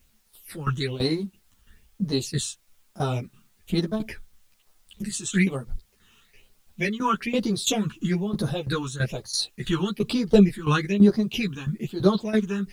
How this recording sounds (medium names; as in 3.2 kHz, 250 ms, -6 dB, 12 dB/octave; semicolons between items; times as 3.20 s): phasing stages 8, 1.1 Hz, lowest notch 600–2600 Hz; tremolo saw down 3 Hz, depth 85%; a quantiser's noise floor 12-bit, dither triangular; a shimmering, thickened sound